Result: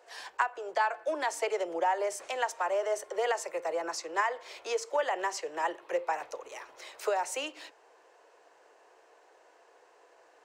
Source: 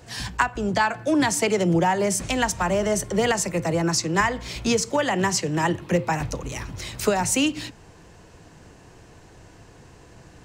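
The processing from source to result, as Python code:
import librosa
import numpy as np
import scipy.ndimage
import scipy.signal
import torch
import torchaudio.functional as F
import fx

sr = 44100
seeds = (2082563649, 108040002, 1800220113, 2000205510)

y = scipy.signal.sosfilt(scipy.signal.cheby2(4, 40, 230.0, 'highpass', fs=sr, output='sos'), x)
y = fx.high_shelf(y, sr, hz=2200.0, db=-12.0)
y = y * 10.0 ** (-4.0 / 20.0)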